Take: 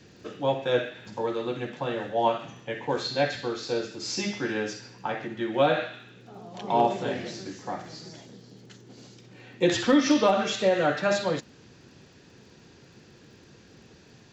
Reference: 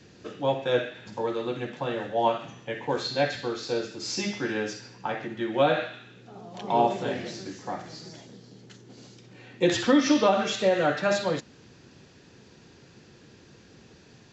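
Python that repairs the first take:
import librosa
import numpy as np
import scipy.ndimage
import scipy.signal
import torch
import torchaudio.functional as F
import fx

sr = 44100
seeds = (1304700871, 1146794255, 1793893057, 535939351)

y = fx.fix_declip(x, sr, threshold_db=-11.5)
y = fx.fix_declick_ar(y, sr, threshold=6.5)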